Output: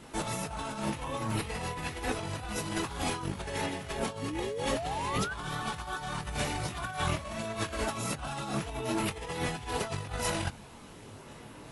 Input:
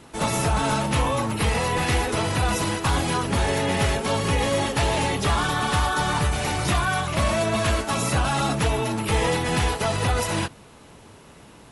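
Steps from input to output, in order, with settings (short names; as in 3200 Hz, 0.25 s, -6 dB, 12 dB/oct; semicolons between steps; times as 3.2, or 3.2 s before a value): chorus voices 4, 0.32 Hz, delay 23 ms, depth 4.2 ms; negative-ratio compressor -30 dBFS, ratio -0.5; painted sound rise, 4.22–5.34, 260–1600 Hz -33 dBFS; gain -3.5 dB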